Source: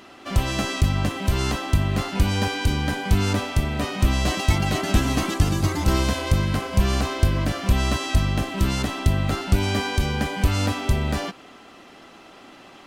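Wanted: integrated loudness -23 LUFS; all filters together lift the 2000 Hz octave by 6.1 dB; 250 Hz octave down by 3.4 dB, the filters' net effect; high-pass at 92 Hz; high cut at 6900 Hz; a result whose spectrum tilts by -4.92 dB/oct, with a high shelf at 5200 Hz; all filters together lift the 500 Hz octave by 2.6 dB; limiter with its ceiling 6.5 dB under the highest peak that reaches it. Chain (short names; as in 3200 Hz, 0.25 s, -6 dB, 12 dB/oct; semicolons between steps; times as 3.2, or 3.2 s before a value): HPF 92 Hz; LPF 6900 Hz; bell 250 Hz -6 dB; bell 500 Hz +5 dB; bell 2000 Hz +8 dB; high shelf 5200 Hz -4 dB; gain +2 dB; limiter -13 dBFS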